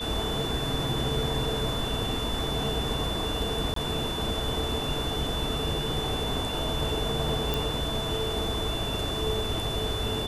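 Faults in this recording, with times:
whine 3.5 kHz -33 dBFS
3.74–3.76 s: dropout 23 ms
7.54 s: pop

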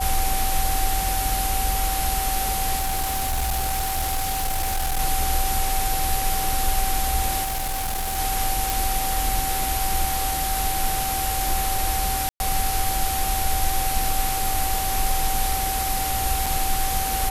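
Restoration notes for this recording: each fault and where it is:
whine 770 Hz -26 dBFS
2.75–5.00 s: clipped -20 dBFS
7.43–8.19 s: clipped -23 dBFS
8.70 s: pop
12.29–12.40 s: dropout 111 ms
16.46 s: dropout 4.5 ms

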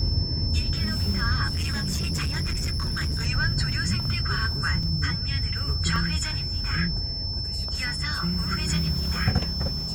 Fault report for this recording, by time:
whine 5.3 kHz -30 dBFS
1.47–3.27 s: clipped -23.5 dBFS
4.83 s: dropout 3.6 ms
5.96 s: dropout 2.1 ms

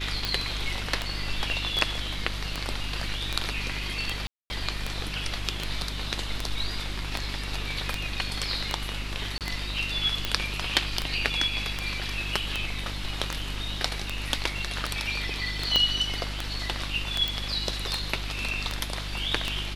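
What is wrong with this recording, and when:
hum 50 Hz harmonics 7 -35 dBFS
tick 78 rpm -11 dBFS
4.27–4.50 s: dropout 230 ms
9.38–9.41 s: dropout 28 ms
15.76 s: pop -8 dBFS
17.28 s: pop

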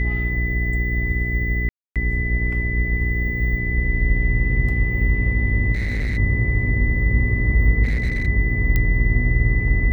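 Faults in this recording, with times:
hum 60 Hz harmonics 7 -23 dBFS
whine 2 kHz -25 dBFS
1.69–1.96 s: dropout 267 ms
5.73–6.18 s: clipped -19.5 dBFS
7.83–8.27 s: clipped -17 dBFS
8.76 s: pop -8 dBFS

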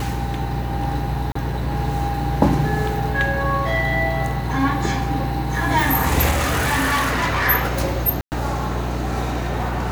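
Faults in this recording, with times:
hum 60 Hz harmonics 7 -26 dBFS
1.32–1.35 s: dropout 34 ms
6.30–7.48 s: clipped -16 dBFS
8.21–8.32 s: dropout 109 ms

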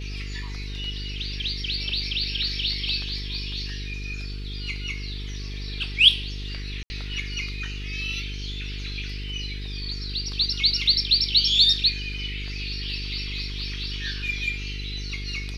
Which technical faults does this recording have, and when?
buzz 50 Hz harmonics 9 -33 dBFS
6.83–6.90 s: dropout 70 ms

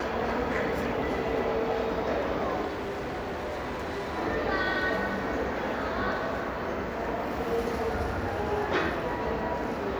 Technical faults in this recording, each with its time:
2.66–4.18 s: clipped -30 dBFS

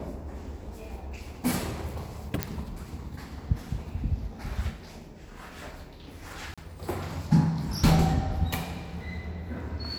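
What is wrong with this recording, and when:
2.43 s: pop -9 dBFS
6.54–6.58 s: dropout 36 ms

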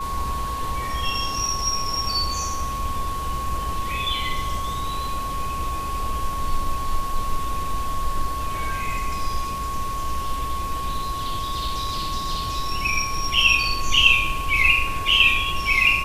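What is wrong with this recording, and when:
whine 1.1 kHz -27 dBFS

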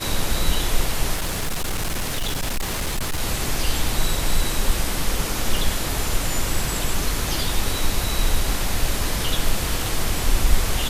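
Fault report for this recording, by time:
1.14–3.21 s: clipped -20 dBFS

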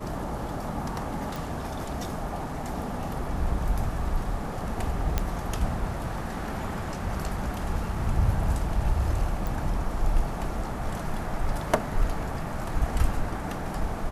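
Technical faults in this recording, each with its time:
1.36 s: pop
5.18 s: pop -10 dBFS
9.47 s: pop

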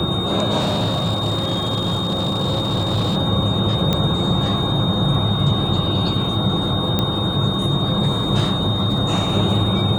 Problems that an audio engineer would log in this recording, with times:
whine 3.7 kHz -24 dBFS
0.59–3.17 s: clipped -15.5 dBFS
3.93 s: pop -6 dBFS
6.99 s: pop -6 dBFS

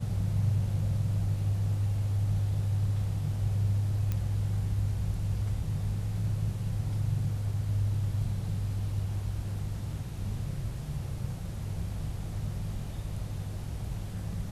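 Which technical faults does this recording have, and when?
4.12 s: pop -19 dBFS

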